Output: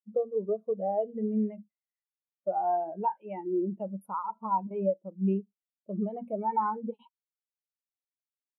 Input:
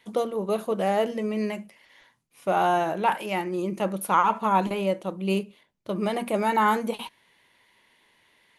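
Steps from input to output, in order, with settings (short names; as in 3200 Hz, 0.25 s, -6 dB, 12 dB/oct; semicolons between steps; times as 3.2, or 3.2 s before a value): compressor 3:1, threshold -28 dBFS, peak gain reduction 10 dB; spectral expander 2.5:1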